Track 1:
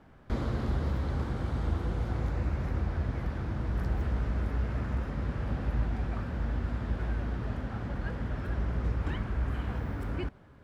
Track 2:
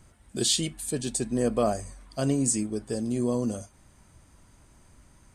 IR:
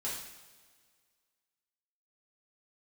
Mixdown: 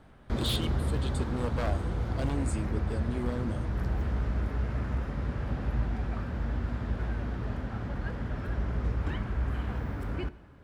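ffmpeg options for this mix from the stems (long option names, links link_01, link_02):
-filter_complex "[0:a]volume=-0.5dB,asplit=2[link_01][link_02];[link_02]volume=-16dB[link_03];[1:a]highshelf=frequency=4600:width_type=q:width=3:gain=-8,aeval=exprs='0.1*(abs(mod(val(0)/0.1+3,4)-2)-1)':channel_layout=same,volume=-7dB[link_04];[2:a]atrim=start_sample=2205[link_05];[link_03][link_05]afir=irnorm=-1:irlink=0[link_06];[link_01][link_04][link_06]amix=inputs=3:normalize=0"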